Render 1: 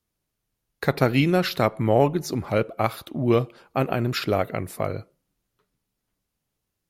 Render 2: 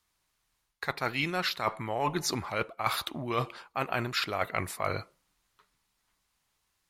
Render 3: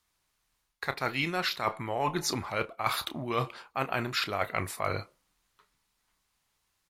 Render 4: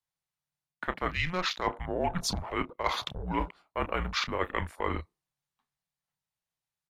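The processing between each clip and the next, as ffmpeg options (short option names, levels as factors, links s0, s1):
-af "equalizer=f=125:t=o:w=1:g=-5,equalizer=f=250:t=o:w=1:g=-4,equalizer=f=500:t=o:w=1:g=-4,equalizer=f=1000:t=o:w=1:g=9,equalizer=f=2000:t=o:w=1:g=6,equalizer=f=4000:t=o:w=1:g=6,equalizer=f=8000:t=o:w=1:g=6,areverse,acompressor=threshold=0.0501:ratio=16,areverse"
-filter_complex "[0:a]asplit=2[s0][s1];[s1]adelay=30,volume=0.224[s2];[s0][s2]amix=inputs=2:normalize=0"
-af "afwtdn=0.00891,afreqshift=-180"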